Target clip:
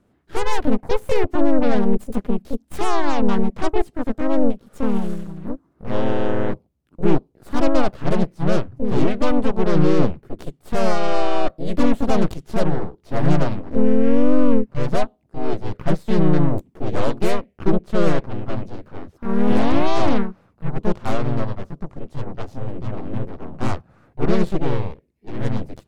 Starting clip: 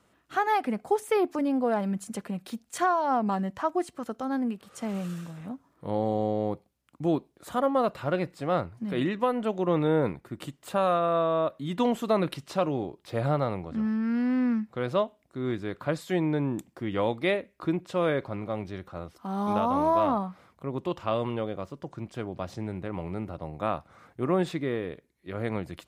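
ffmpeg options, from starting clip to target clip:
-filter_complex "[0:a]aeval=exprs='0.2*(cos(1*acos(clip(val(0)/0.2,-1,1)))-cos(1*PI/2))+0.0224*(cos(3*acos(clip(val(0)/0.2,-1,1)))-cos(3*PI/2))+0.0447*(cos(5*acos(clip(val(0)/0.2,-1,1)))-cos(5*PI/2))+0.0251*(cos(7*acos(clip(val(0)/0.2,-1,1)))-cos(7*PI/2))+0.0708*(cos(8*acos(clip(val(0)/0.2,-1,1)))-cos(8*PI/2))':c=same,asplit=2[s0][s1];[s1]asetrate=52444,aresample=44100,atempo=0.840896,volume=0.891[s2];[s0][s2]amix=inputs=2:normalize=0,tiltshelf=f=670:g=8,volume=0.841"

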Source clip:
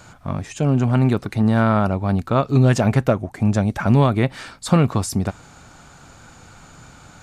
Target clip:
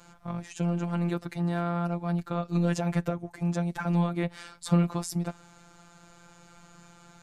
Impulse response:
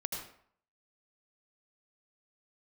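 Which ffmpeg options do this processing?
-filter_complex "[0:a]acrossover=split=280[s0][s1];[s1]alimiter=limit=0.237:level=0:latency=1:release=138[s2];[s0][s2]amix=inputs=2:normalize=0,afftfilt=real='hypot(re,im)*cos(PI*b)':imag='0':win_size=1024:overlap=0.75,volume=0.531"

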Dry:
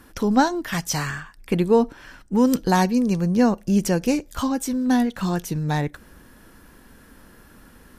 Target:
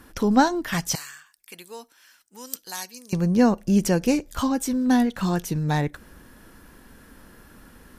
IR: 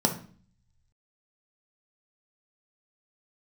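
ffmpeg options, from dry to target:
-filter_complex "[0:a]asettb=1/sr,asplit=3[s0][s1][s2];[s0]atrim=end=0.954[s3];[s1]atrim=start=0.95:end=3.13,asetpts=PTS-STARTPTS,afade=t=in:d=0.004:c=qsin,afade=t=out:st=2.176:d=0.004:c=qsin,aderivative[s4];[s2]atrim=start=3.126[s5];[s3][s4]acrossfade=d=0.004:c1=hsin:c2=qsin[s6];[s6][s5]acrossfade=d=0.004:c1=qsin:c2=hsin"

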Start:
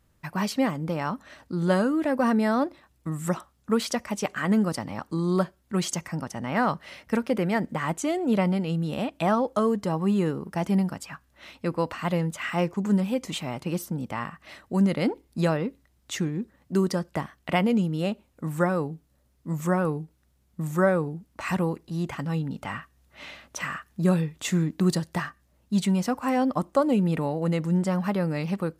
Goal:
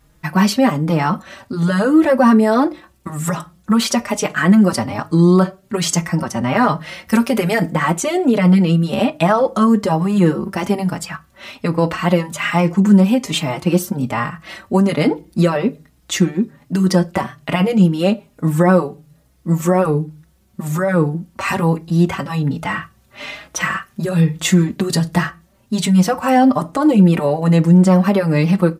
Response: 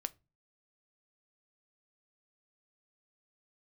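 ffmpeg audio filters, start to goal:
-filter_complex "[0:a]asettb=1/sr,asplit=3[s0][s1][s2];[s0]atrim=end=7.074[s3];[s1]atrim=start=7.07:end=7.7,asetpts=PTS-STARTPTS,afade=t=in:d=0.004:c=qsin,afade=t=out:st=0.626:d=0.004:c=qsin,highshelf=f=4900:g=11[s4];[s2]atrim=start=7.696[s5];[s3][s4]acrossfade=d=0.004:c1=hsin:c2=qsin[s6];[s6][s5]acrossfade=d=0.004:c1=qsin:c2=hsin[s7];[1:a]atrim=start_sample=2205[s8];[s7][s8]afir=irnorm=-1:irlink=0,alimiter=level_in=7.5:limit=0.891:release=50:level=0:latency=1,asplit=2[s9][s10];[s10]adelay=4.4,afreqshift=1.2[s11];[s9][s11]amix=inputs=2:normalize=1,volume=0.841"

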